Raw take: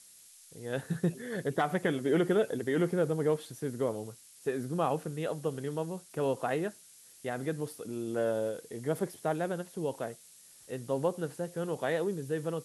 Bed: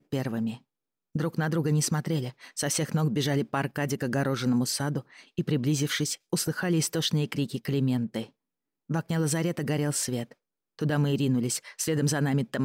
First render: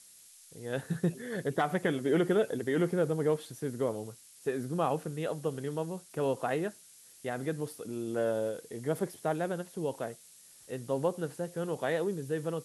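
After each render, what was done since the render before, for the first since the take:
no processing that can be heard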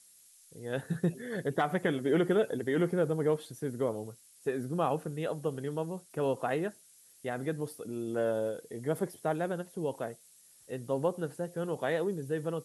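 broadband denoise 6 dB, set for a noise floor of −56 dBFS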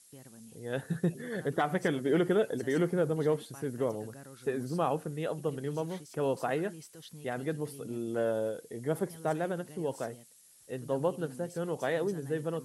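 mix in bed −23 dB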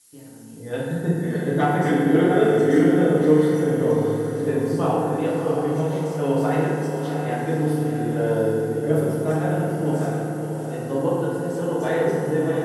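on a send: feedback delay with all-pass diffusion 669 ms, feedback 43%, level −6 dB
on the sum: feedback delay network reverb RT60 2 s, low-frequency decay 1.5×, high-frequency decay 0.5×, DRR −7 dB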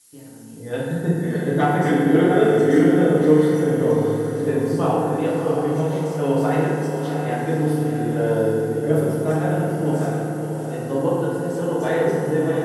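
level +1.5 dB

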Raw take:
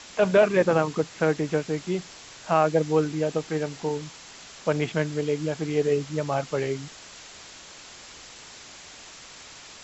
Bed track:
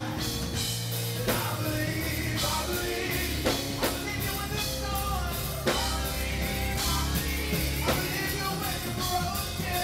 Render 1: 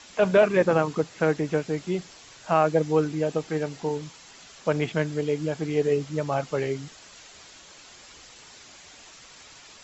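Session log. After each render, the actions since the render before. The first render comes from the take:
broadband denoise 6 dB, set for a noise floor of −46 dBFS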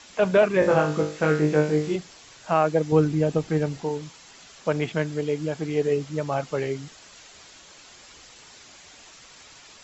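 0:00.60–0:01.96: flutter between parallel walls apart 3.4 metres, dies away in 0.4 s
0:02.92–0:03.81: low-shelf EQ 220 Hz +11.5 dB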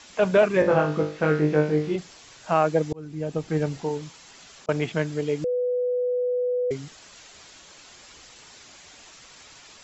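0:00.62–0:01.98: high-frequency loss of the air 120 metres
0:02.53–0:04.69: volume swells 724 ms
0:05.44–0:06.71: beep over 495 Hz −21.5 dBFS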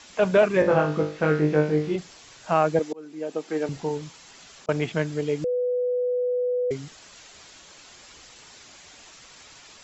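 0:02.79–0:03.69: high-pass filter 260 Hz 24 dB per octave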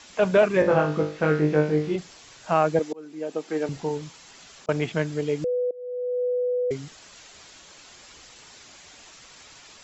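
0:05.71–0:06.24: fade in, from −23 dB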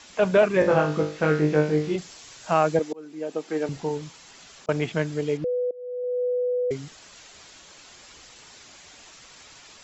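0:00.61–0:02.77: high-shelf EQ 4,500 Hz +6.5 dB
0:05.37–0:06.04: high-frequency loss of the air 210 metres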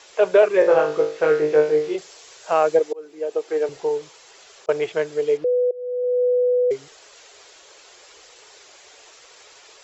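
low shelf with overshoot 310 Hz −11 dB, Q 3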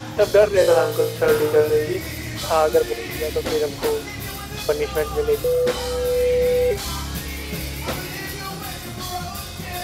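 mix in bed track 0 dB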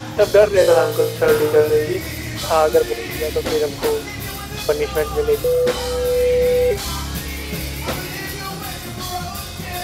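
level +2.5 dB

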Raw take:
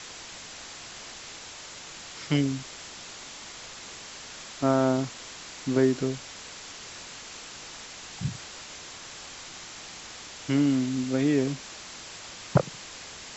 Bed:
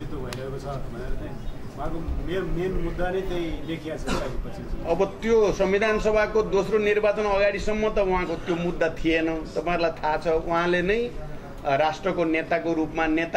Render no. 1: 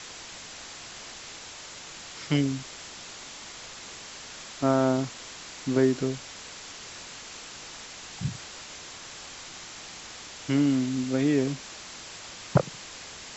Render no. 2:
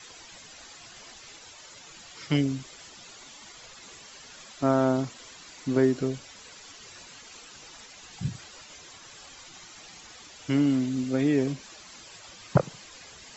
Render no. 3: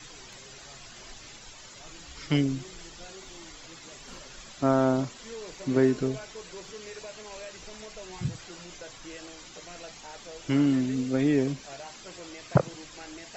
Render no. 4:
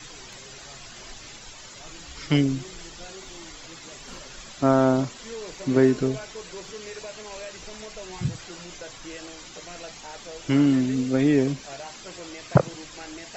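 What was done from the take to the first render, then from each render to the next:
no processing that can be heard
broadband denoise 11 dB, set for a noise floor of −43 dBFS
mix in bed −22 dB
level +4 dB

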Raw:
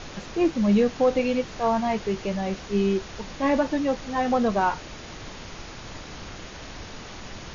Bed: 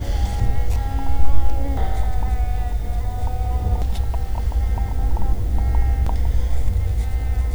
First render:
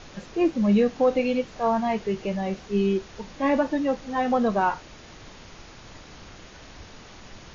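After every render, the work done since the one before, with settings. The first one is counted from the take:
noise reduction from a noise print 6 dB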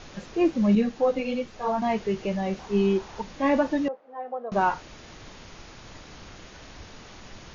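0:00.75–0:01.82: string-ensemble chorus
0:02.59–0:03.22: parametric band 890 Hz +10.5 dB 0.7 octaves
0:03.88–0:04.52: four-pole ladder band-pass 690 Hz, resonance 35%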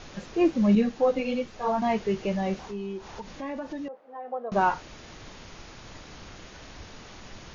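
0:02.68–0:04.31: downward compressor 3 to 1, threshold −35 dBFS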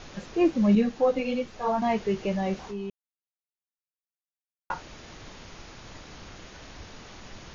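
0:02.90–0:04.70: silence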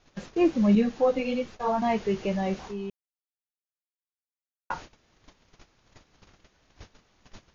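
noise gate −41 dBFS, range −20 dB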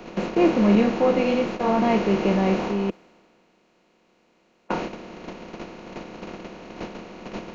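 compressor on every frequency bin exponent 0.4
multiband upward and downward expander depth 40%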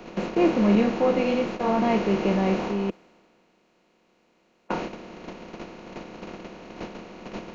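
level −2 dB

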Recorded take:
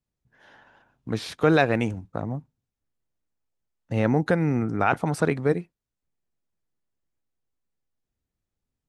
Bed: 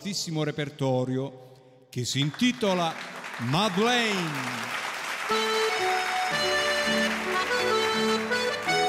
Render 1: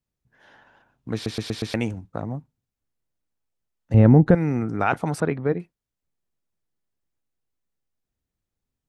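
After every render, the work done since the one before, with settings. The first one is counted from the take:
0:01.14: stutter in place 0.12 s, 5 plays
0:03.94–0:04.35: spectral tilt −4 dB per octave
0:05.20–0:05.60: high-frequency loss of the air 310 metres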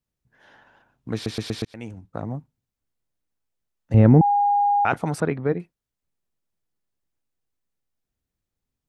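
0:01.65–0:02.26: fade in
0:04.21–0:04.85: beep over 815 Hz −16 dBFS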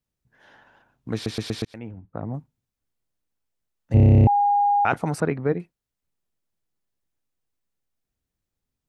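0:01.78–0:02.34: high-frequency loss of the air 470 metres
0:03.94: stutter in place 0.03 s, 11 plays
0:05.00–0:05.51: parametric band 3,400 Hz −7 dB 0.21 octaves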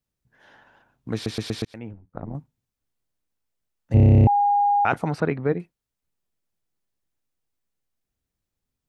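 0:01.93–0:02.35: amplitude modulation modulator 86 Hz, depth 75%
0:05.06–0:05.54: high shelf with overshoot 5,700 Hz −12.5 dB, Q 1.5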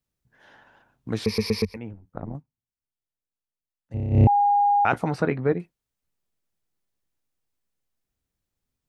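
0:01.25–0:01.77: EQ curve with evenly spaced ripples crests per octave 0.86, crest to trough 18 dB
0:02.31–0:04.22: duck −13.5 dB, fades 0.12 s
0:04.92–0:05.53: double-tracking delay 16 ms −12 dB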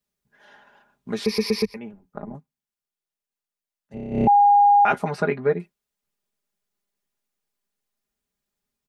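low-shelf EQ 140 Hz −10.5 dB
comb filter 4.9 ms, depth 82%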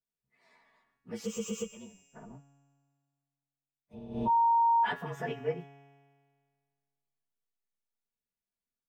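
partials spread apart or drawn together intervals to 111%
tuned comb filter 140 Hz, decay 1.8 s, mix 70%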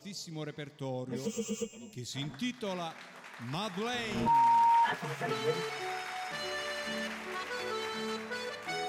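mix in bed −12 dB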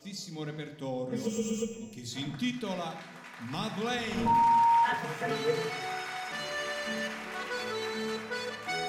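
rectangular room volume 2,000 cubic metres, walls furnished, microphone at 1.9 metres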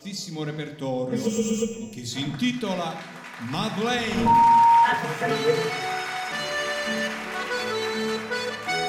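level +7.5 dB

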